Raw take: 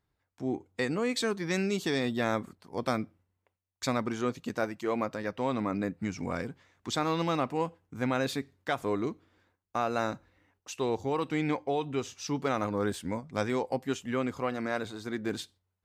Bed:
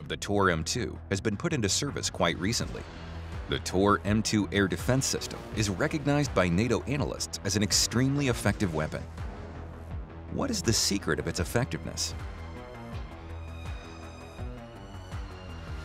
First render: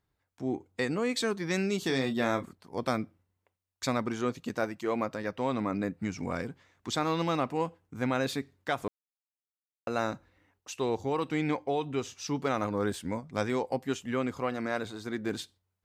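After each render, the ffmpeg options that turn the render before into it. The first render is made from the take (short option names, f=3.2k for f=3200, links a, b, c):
-filter_complex "[0:a]asettb=1/sr,asplit=3[a][b][c];[a]atrim=end=1.794[d];[b]atrim=start=1.79:end=2.44,asetpts=PTS-STARTPTS,afade=t=in:d=0.004:c=qsin,afade=t=out:st=0.646:d=0.004:c=qsin,asplit=2[e][f];[f]adelay=30,volume=-8.5dB[g];[e][g]amix=inputs=2:normalize=0,atrim=end_sample=28665[h];[c]atrim=start=2.436[i];[d][h]acrossfade=d=0.004:c1=hsin:c2=qsin[j];[j][i]acrossfade=d=0.004:c1=qsin:c2=hsin,asplit=3[k][l][m];[k]atrim=end=8.88,asetpts=PTS-STARTPTS,afade=t=out:st=8.876:d=0.004:c=hsin[n];[l]atrim=start=8.88:end=9.87,asetpts=PTS-STARTPTS,volume=0[o];[m]atrim=start=9.87,asetpts=PTS-STARTPTS,afade=t=in:d=0.004:c=hsin[p];[n][o][p]concat=n=3:v=0:a=1"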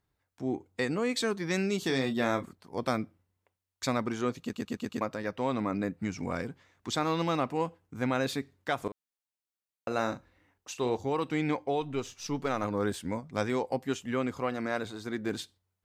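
-filter_complex "[0:a]asettb=1/sr,asplit=3[a][b][c];[a]atrim=end=8.814[d];[b]atrim=start=8.81:end=10.97,asetpts=PTS-STARTPTS,afade=t=in:d=0.004:c=qsin,afade=t=out:st=2.156:d=0.004:c=qsin,asplit=2[e][f];[f]adelay=40,volume=-11dB[g];[e][g]amix=inputs=2:normalize=0,atrim=end_sample=95256[h];[c]atrim=start=10.966[i];[d][h]acrossfade=d=0.004:c1=hsin:c2=qsin[j];[j][i]acrossfade=d=0.004:c1=qsin:c2=hsin,asettb=1/sr,asplit=3[k][l][m];[k]atrim=end=11.814[n];[l]atrim=start=11.81:end=12.64,asetpts=PTS-STARTPTS,afade=t=in:d=0.004:c=qsin,afade=t=out:st=0.826:d=0.004:c=qsin,aeval=exprs='if(lt(val(0),0),0.708*val(0),val(0))':c=same[o];[m]atrim=start=12.636[p];[n][o]acrossfade=d=0.004:c1=hsin:c2=qsin[q];[q][p]acrossfade=d=0.004:c1=qsin:c2=hsin,asplit=6[r][s][t][u][v][w];[r]atrim=end=4.532[x];[s]atrim=start=4.408:end=4.532[y];[t]atrim=start=4.408:end=4.532[z];[u]atrim=start=4.408:end=4.532[aa];[v]atrim=start=4.408:end=4.532[ab];[w]atrim=start=5.008[ac];[x][y]acrossfade=d=0.004:c1=hsin:c2=hsin[ad];[ad][z]acrossfade=d=0.004:c1=hsin:c2=hsin[ae];[ae][aa]acrossfade=d=0.004:c1=hsin:c2=hsin[af];[af][ab]acrossfade=d=0.004:c1=hsin:c2=hsin[ag];[ag][ac]acrossfade=d=0.004:c1=hsin:c2=hsin"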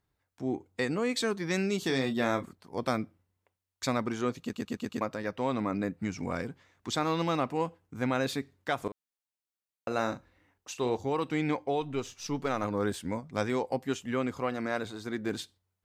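-af anull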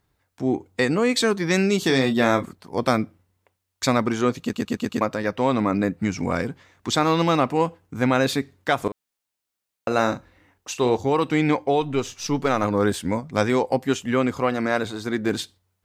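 -af "volume=9.5dB"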